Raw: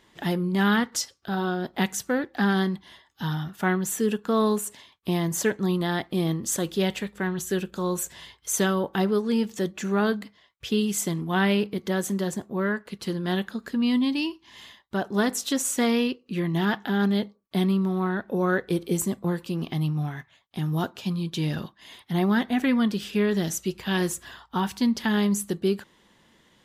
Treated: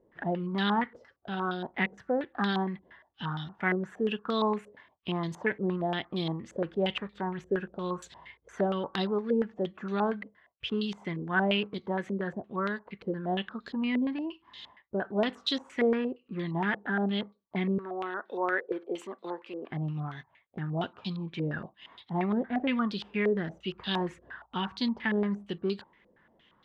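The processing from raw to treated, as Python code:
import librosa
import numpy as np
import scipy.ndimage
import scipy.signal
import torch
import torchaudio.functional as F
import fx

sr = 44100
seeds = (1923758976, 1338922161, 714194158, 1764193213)

y = fx.highpass(x, sr, hz=320.0, slope=24, at=(17.78, 19.71))
y = fx.filter_held_lowpass(y, sr, hz=8.6, low_hz=510.0, high_hz=3900.0)
y = y * 10.0 ** (-7.5 / 20.0)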